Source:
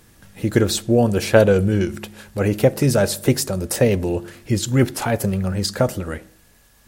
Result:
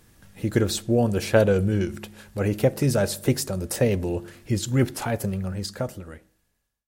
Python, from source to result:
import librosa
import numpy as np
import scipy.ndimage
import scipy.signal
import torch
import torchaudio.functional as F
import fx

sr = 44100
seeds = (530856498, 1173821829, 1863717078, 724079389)

y = fx.fade_out_tail(x, sr, length_s=1.92)
y = fx.low_shelf(y, sr, hz=150.0, db=2.5)
y = y * 10.0 ** (-5.5 / 20.0)